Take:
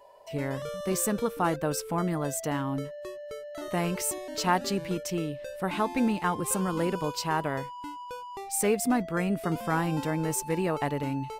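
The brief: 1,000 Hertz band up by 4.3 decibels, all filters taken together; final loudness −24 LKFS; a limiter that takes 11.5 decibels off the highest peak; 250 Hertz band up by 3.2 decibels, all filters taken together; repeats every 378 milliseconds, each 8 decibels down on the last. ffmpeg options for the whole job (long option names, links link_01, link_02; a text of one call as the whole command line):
ffmpeg -i in.wav -af "equalizer=frequency=250:width_type=o:gain=4,equalizer=frequency=1000:width_type=o:gain=5,alimiter=limit=-19.5dB:level=0:latency=1,aecho=1:1:378|756|1134|1512|1890:0.398|0.159|0.0637|0.0255|0.0102,volume=5.5dB" out.wav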